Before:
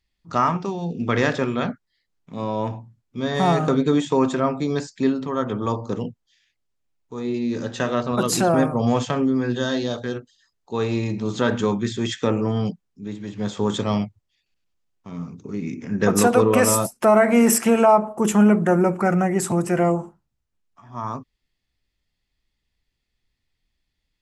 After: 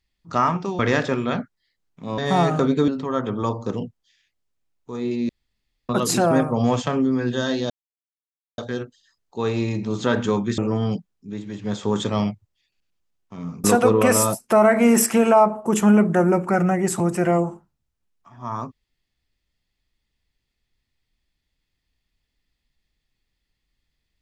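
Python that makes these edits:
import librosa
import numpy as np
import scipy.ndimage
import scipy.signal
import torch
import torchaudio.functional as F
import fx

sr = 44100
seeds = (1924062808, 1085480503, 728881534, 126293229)

y = fx.edit(x, sr, fx.cut(start_s=0.79, length_s=0.3),
    fx.cut(start_s=2.48, length_s=0.79),
    fx.cut(start_s=3.97, length_s=1.14),
    fx.room_tone_fill(start_s=7.52, length_s=0.6),
    fx.insert_silence(at_s=9.93, length_s=0.88),
    fx.cut(start_s=11.93, length_s=0.39),
    fx.cut(start_s=15.38, length_s=0.78), tone=tone)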